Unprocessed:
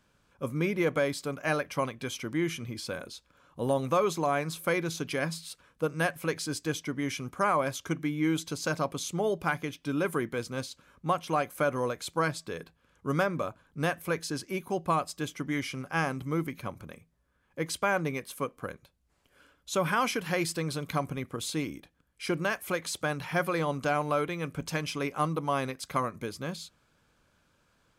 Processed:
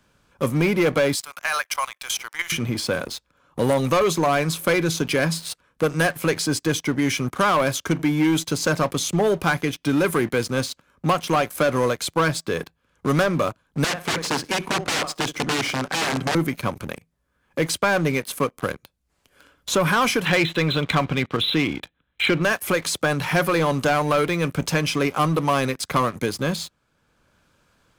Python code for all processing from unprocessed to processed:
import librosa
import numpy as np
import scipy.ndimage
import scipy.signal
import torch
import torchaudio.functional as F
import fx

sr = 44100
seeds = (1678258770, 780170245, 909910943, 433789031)

y = fx.chain(x, sr, fx.highpass(hz=850.0, slope=24),
    fx.high_shelf(hz=3800.0, db=9.5),
    fx.level_steps(step_db=12), at=(1.15, 2.52))
y = fx.chain(y, sr, fx.echo_feedback(ms=66, feedback_pct=36, wet_db=-18),
    fx.overflow_wrap(gain_db=29.0),
    fx.bandpass_edges(low_hz=120.0, high_hz=7400.0), at=(13.84, 16.35))
y = fx.chain(y, sr, fx.brickwall_lowpass(high_hz=4100.0),
    fx.high_shelf(hz=2000.0, db=11.5), at=(20.25, 22.43))
y = fx.leveller(y, sr, passes=3)
y = fx.band_squash(y, sr, depth_pct=40)